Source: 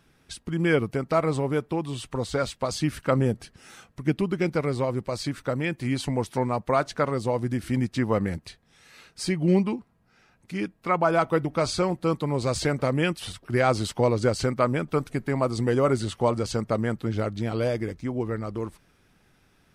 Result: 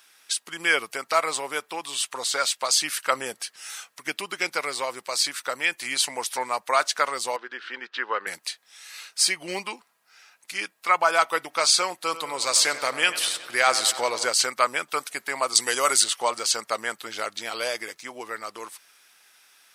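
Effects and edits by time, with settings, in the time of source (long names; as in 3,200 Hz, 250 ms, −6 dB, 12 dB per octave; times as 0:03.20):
0:07.36–0:08.27: loudspeaker in its box 400–3,300 Hz, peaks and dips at 400 Hz +6 dB, 680 Hz −9 dB, 1,500 Hz +7 dB, 2,200 Hz −7 dB
0:11.94–0:14.25: feedback echo with a low-pass in the loop 93 ms, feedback 74%, low-pass 3,900 Hz, level −13 dB
0:15.55–0:16.04: high-shelf EQ 3,300 Hz +10 dB
whole clip: high-pass filter 940 Hz 12 dB per octave; high-shelf EQ 3,300 Hz +11.5 dB; level +5 dB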